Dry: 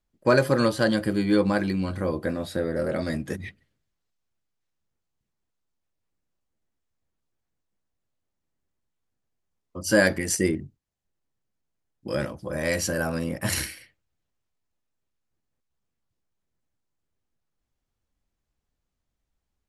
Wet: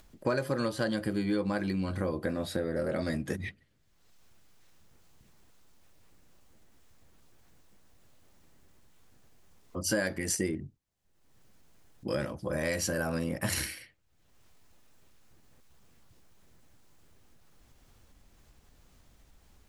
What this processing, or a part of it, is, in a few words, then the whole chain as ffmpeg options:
upward and downward compression: -af "acompressor=mode=upward:threshold=-41dB:ratio=2.5,acompressor=threshold=-28dB:ratio=4"

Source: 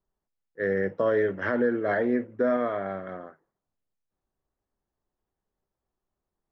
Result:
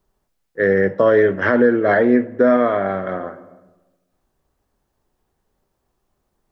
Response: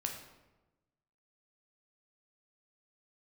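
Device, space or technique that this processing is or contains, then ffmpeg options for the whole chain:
ducked reverb: -filter_complex "[0:a]asplit=3[link_01][link_02][link_03];[1:a]atrim=start_sample=2205[link_04];[link_02][link_04]afir=irnorm=-1:irlink=0[link_05];[link_03]apad=whole_len=287430[link_06];[link_05][link_06]sidechaincompress=threshold=-34dB:ratio=8:attack=16:release=694,volume=-1dB[link_07];[link_01][link_07]amix=inputs=2:normalize=0,volume=9dB"

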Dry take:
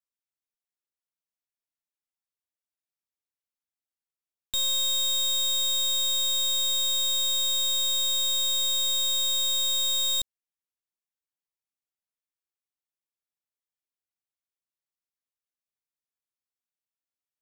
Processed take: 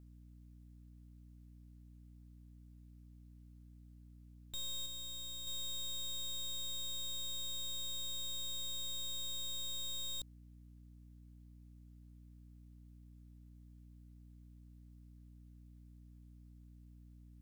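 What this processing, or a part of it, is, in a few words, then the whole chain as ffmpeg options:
valve amplifier with mains hum: -filter_complex "[0:a]asplit=3[link_01][link_02][link_03];[link_01]afade=type=out:start_time=4.84:duration=0.02[link_04];[link_02]agate=range=-33dB:threshold=-11dB:ratio=3:detection=peak,afade=type=in:start_time=4.84:duration=0.02,afade=type=out:start_time=5.47:duration=0.02[link_05];[link_03]afade=type=in:start_time=5.47:duration=0.02[link_06];[link_04][link_05][link_06]amix=inputs=3:normalize=0,aeval=exprs='(tanh(447*val(0)+0.5)-tanh(0.5))/447':channel_layout=same,aeval=exprs='val(0)+0.000447*(sin(2*PI*60*n/s)+sin(2*PI*2*60*n/s)/2+sin(2*PI*3*60*n/s)/3+sin(2*PI*4*60*n/s)/4+sin(2*PI*5*60*n/s)/5)':channel_layout=same,volume=11dB"

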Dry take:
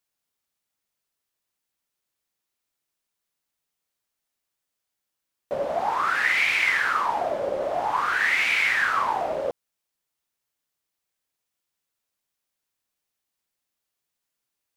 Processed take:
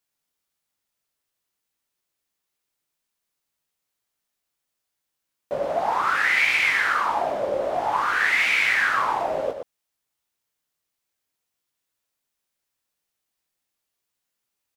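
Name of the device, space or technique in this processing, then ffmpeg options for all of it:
slapback doubling: -filter_complex "[0:a]asplit=3[link_01][link_02][link_03];[link_02]adelay=19,volume=-6.5dB[link_04];[link_03]adelay=119,volume=-7dB[link_05];[link_01][link_04][link_05]amix=inputs=3:normalize=0"

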